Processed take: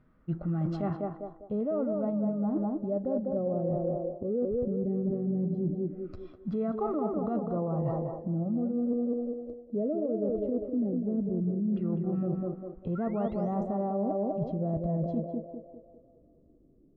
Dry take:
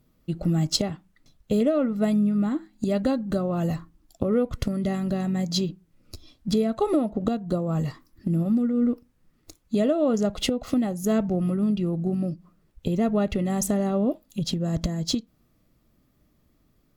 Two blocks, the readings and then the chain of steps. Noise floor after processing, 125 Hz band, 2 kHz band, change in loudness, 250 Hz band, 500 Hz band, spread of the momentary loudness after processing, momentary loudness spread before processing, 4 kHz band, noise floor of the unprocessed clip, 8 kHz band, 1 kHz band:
-61 dBFS, -5.0 dB, under -15 dB, -6.0 dB, -6.0 dB, -3.5 dB, 6 LU, 8 LU, under -30 dB, -66 dBFS, under -40 dB, -3.0 dB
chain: painted sound rise, 12.95–13.62, 1300–9300 Hz -37 dBFS; in parallel at +2.5 dB: limiter -20 dBFS, peak gain reduction 11 dB; on the sum: LFO low-pass saw down 0.17 Hz 280–1600 Hz; harmonic-percussive split percussive -6 dB; narrowing echo 0.2 s, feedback 53%, band-pass 520 Hz, level -3 dB; reverse; compressor 10:1, threshold -21 dBFS, peak gain reduction 13 dB; reverse; gain -5.5 dB

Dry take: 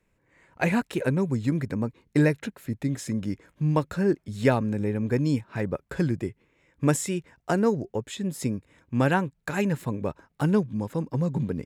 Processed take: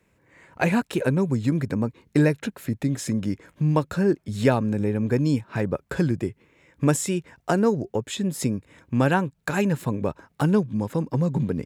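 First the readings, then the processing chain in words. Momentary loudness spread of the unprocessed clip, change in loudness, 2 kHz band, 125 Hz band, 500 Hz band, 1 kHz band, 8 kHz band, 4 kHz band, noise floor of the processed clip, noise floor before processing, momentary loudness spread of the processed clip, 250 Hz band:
8 LU, +2.5 dB, +1.5 dB, +2.5 dB, +2.5 dB, +2.5 dB, +3.5 dB, +4.0 dB, -68 dBFS, -71 dBFS, 7 LU, +2.5 dB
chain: HPF 57 Hz; dynamic EQ 2000 Hz, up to -4 dB, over -52 dBFS, Q 4.9; in parallel at +2 dB: compressor, threshold -33 dBFS, peak gain reduction 16.5 dB

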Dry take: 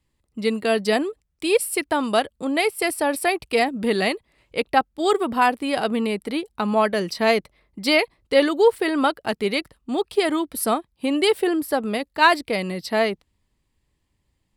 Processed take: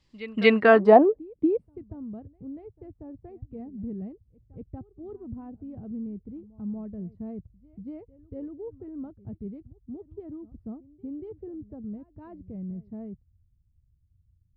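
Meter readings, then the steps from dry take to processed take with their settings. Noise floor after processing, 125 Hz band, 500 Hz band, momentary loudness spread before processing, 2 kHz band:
-67 dBFS, -2.5 dB, -5.0 dB, 8 LU, n/a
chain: low-pass sweep 5200 Hz -> 100 Hz, 0.15–1.85; pre-echo 0.236 s -19.5 dB; gain +3 dB

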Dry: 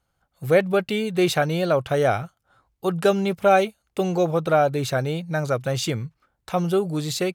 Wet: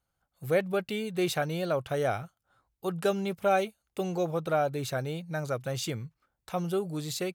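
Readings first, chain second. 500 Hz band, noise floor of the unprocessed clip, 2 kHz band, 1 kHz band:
-8.5 dB, -75 dBFS, -8.5 dB, -8.5 dB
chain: high shelf 8900 Hz +6 dB; gain -8.5 dB

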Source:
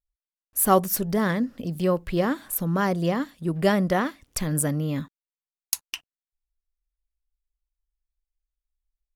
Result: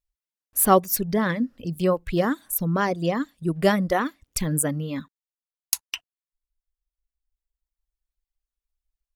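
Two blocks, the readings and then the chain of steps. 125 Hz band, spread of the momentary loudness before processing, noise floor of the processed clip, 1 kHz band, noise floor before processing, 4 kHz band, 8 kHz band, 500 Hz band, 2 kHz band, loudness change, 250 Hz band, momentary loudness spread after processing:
-0.5 dB, 10 LU, under -85 dBFS, +1.5 dB, under -85 dBFS, +1.5 dB, +2.0 dB, +1.0 dB, +1.5 dB, +1.0 dB, 0.0 dB, 10 LU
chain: reverb removal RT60 1.5 s; gain +2 dB

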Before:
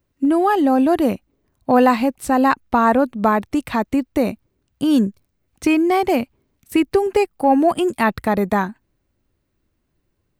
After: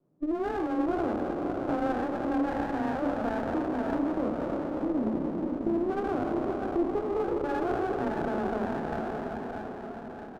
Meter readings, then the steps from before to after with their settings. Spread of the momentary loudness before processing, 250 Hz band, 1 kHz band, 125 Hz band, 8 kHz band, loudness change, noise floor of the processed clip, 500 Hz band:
7 LU, -11.0 dB, -13.5 dB, -7.5 dB, under -20 dB, -12.0 dB, -41 dBFS, -10.0 dB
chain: spectral trails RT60 1.96 s; elliptic band-pass 120–790 Hz; compressor 3:1, threshold -34 dBFS, peak gain reduction 18.5 dB; frequency shift +24 Hz; doubler 32 ms -6 dB; on a send: diffused feedback echo 0.598 s, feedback 58%, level -6 dB; on the sum: running maximum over 17 samples

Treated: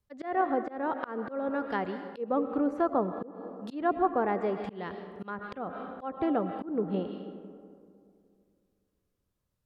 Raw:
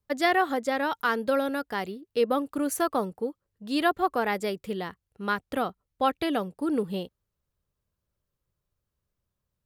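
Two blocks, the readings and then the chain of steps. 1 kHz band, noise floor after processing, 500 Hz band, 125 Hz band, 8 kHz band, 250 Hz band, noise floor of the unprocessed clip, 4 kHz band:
-3.5 dB, -80 dBFS, -3.0 dB, -0.5 dB, under -30 dB, -2.0 dB, -84 dBFS, -17.5 dB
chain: digital reverb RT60 2.4 s, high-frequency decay 0.35×, pre-delay 65 ms, DRR 11 dB; treble ducked by the level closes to 1100 Hz, closed at -24 dBFS; auto swell 0.22 s

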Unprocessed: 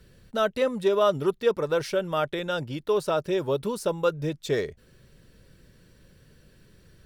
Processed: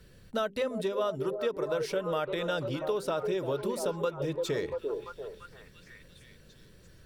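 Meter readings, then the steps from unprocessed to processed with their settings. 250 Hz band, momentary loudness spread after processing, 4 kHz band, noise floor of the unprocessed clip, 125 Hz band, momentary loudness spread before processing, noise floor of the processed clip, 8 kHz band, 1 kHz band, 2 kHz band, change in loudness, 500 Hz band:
-5.0 dB, 7 LU, -4.5 dB, -58 dBFS, -5.0 dB, 7 LU, -56 dBFS, -3.0 dB, -6.0 dB, -5.0 dB, -5.5 dB, -5.5 dB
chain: delay with a stepping band-pass 0.342 s, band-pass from 410 Hz, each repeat 0.7 oct, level -6.5 dB; compressor 6:1, threshold -27 dBFS, peak gain reduction 10.5 dB; notches 50/100/150/200/250/300/350/400 Hz

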